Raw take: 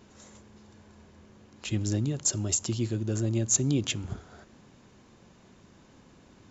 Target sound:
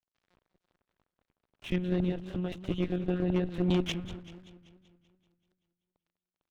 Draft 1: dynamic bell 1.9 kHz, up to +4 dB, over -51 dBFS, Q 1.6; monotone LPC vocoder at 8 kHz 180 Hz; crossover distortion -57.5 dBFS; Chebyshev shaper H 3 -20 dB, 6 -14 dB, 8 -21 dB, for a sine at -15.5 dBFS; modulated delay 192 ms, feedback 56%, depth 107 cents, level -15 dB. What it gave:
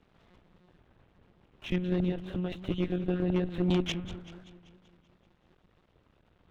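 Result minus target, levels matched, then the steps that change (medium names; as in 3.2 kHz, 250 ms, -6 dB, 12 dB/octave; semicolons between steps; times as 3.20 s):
crossover distortion: distortion -7 dB
change: crossover distortion -47.5 dBFS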